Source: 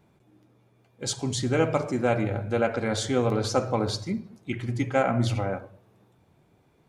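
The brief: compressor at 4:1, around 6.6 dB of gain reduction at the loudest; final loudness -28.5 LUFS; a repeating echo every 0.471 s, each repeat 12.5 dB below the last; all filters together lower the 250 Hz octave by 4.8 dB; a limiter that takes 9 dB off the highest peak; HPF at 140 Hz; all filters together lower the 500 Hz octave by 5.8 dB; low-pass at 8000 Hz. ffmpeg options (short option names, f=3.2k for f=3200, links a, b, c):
-af "highpass=140,lowpass=8k,equalizer=f=250:t=o:g=-3.5,equalizer=f=500:t=o:g=-6,acompressor=threshold=-30dB:ratio=4,alimiter=level_in=3.5dB:limit=-24dB:level=0:latency=1,volume=-3.5dB,aecho=1:1:471|942|1413:0.237|0.0569|0.0137,volume=9.5dB"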